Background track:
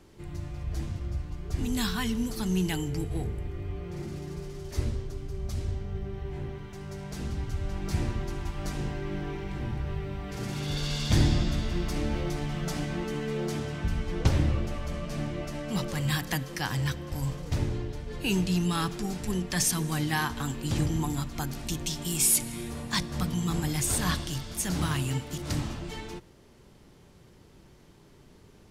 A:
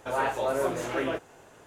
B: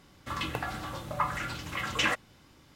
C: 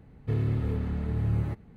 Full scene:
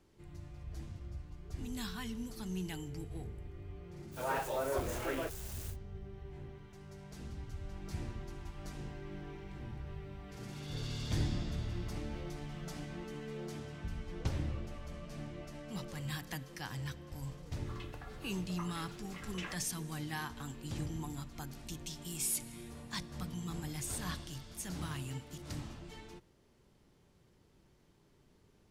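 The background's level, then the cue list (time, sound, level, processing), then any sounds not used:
background track -12 dB
4.11 s: add A -8 dB, fades 0.10 s + zero-crossing glitches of -30.5 dBFS
10.45 s: add C -11.5 dB + peak limiter -24.5 dBFS
17.39 s: add B -17.5 dB

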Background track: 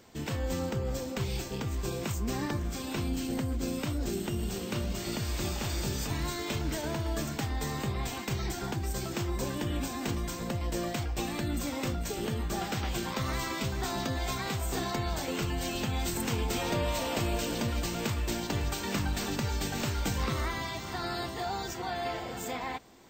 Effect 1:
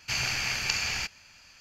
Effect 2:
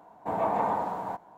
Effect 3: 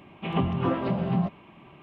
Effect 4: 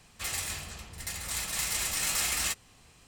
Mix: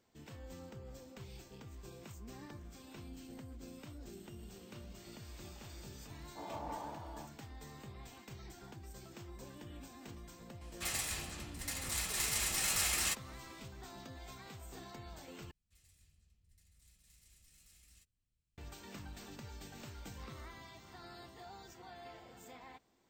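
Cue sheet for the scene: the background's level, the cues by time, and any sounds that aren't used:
background track -18 dB
6.10 s: add 2 -7.5 dB + feedback comb 290 Hz, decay 0.2 s, mix 80%
10.61 s: add 4 -4 dB
15.51 s: replace with 4 -15 dB + amplifier tone stack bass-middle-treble 10-0-1
not used: 1, 3

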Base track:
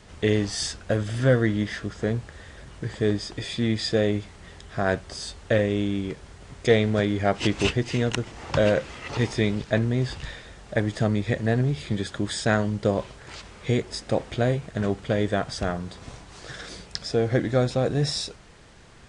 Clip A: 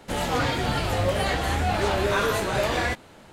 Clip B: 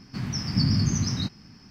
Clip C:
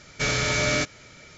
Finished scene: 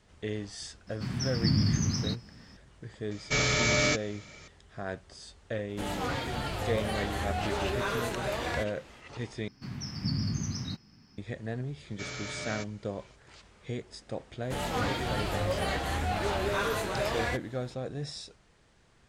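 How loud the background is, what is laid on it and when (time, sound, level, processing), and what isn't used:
base track -13 dB
0.87 s: add B -3.5 dB
3.11 s: add C -2 dB + band-stop 1.5 kHz, Q 8.4
5.69 s: add A -8.5 dB
9.48 s: replace with B -8.5 dB
11.79 s: add C -15 dB + high-pass 56 Hz
14.42 s: add A -6.5 dB

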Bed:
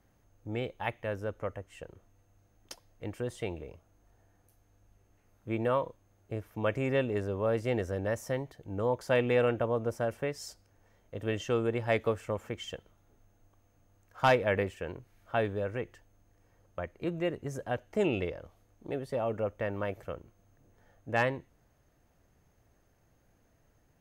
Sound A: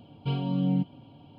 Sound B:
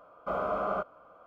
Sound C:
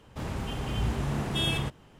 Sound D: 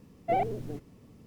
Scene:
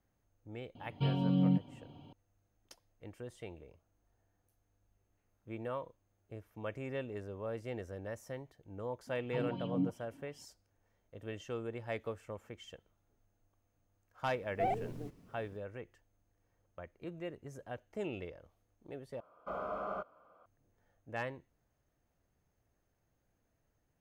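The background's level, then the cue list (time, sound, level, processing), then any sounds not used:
bed -11 dB
0.75 s: add A -3 dB
9.07 s: add A -15 dB + sweeping bell 2.7 Hz 260–3400 Hz +16 dB
14.31 s: add D -6 dB
19.20 s: replace with B -8.5 dB
not used: C

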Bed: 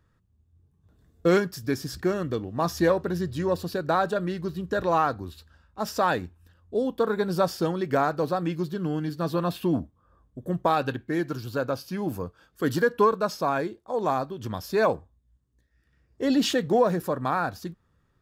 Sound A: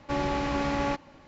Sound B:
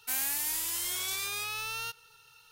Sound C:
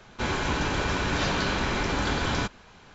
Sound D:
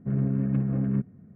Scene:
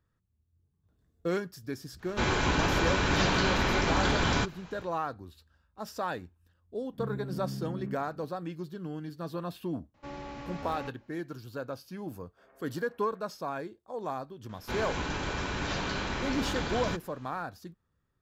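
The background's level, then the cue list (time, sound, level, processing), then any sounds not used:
bed -10 dB
1.98 s: add C, fades 0.10 s
6.93 s: add D -5 dB + compression, threshold -28 dBFS
9.94 s: add A -13.5 dB + buffer glitch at 0.68 s
12.31 s: add D -11 dB + high-pass 630 Hz 24 dB/octave
14.49 s: add C -6.5 dB
not used: B

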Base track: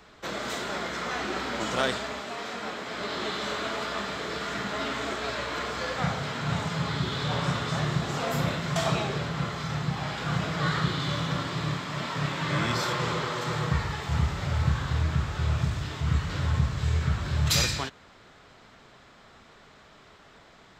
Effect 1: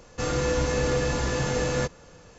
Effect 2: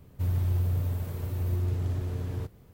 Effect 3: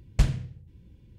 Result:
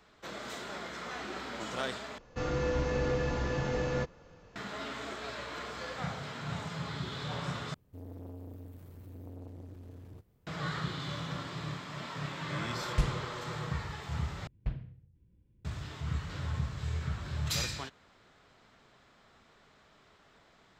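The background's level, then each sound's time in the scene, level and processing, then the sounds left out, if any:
base track -9 dB
2.18 s: replace with 1 -5.5 dB + distance through air 160 m
7.74 s: replace with 2 -14 dB + transformer saturation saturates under 380 Hz
12.79 s: add 3 -7.5 dB
14.47 s: replace with 3 -13 dB + distance through air 390 m

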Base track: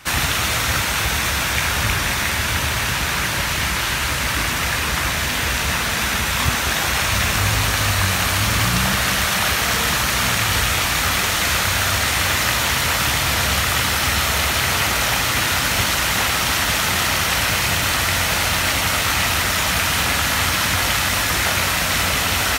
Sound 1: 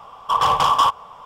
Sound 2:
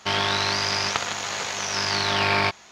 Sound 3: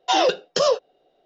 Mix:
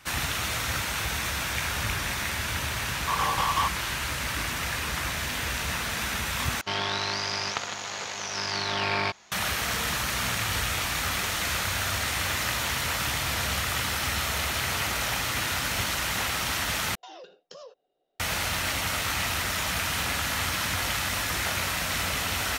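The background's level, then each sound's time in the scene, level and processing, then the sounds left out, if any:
base track -9.5 dB
2.78 s: add 1 -10.5 dB + speakerphone echo 140 ms, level -20 dB
6.61 s: replace with 2 -5.5 dB
16.95 s: replace with 3 -14.5 dB + compression, threshold -28 dBFS

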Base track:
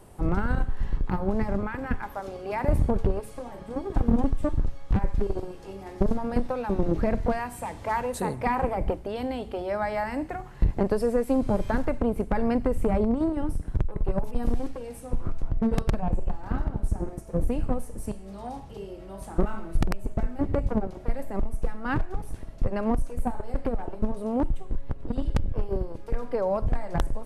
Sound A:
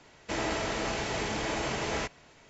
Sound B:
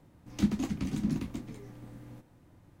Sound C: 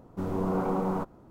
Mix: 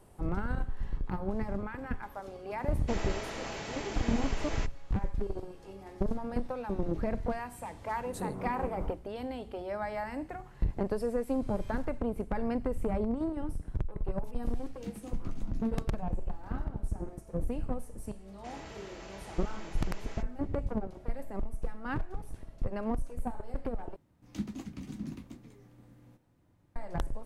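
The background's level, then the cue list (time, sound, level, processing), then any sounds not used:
base track -7.5 dB
2.59 s: add A -7.5 dB
7.88 s: add C -12 dB + rotary cabinet horn 5 Hz
14.44 s: add B -14 dB
18.15 s: add A -16.5 dB
23.96 s: replace with B -9 dB

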